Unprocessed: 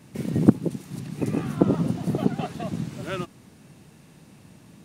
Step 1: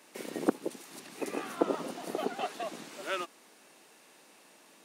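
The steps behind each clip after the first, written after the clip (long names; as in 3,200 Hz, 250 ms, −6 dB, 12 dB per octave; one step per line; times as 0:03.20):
Bessel high-pass filter 530 Hz, order 4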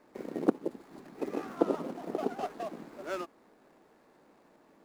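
running median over 15 samples
tilt shelving filter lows +3 dB, about 660 Hz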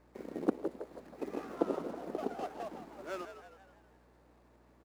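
on a send: echo with shifted repeats 161 ms, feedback 49%, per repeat +67 Hz, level −10 dB
on the sum: mains hum 60 Hz, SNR 26 dB
level −4.5 dB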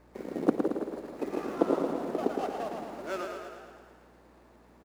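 repeating echo 112 ms, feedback 60%, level −5.5 dB
level +5.5 dB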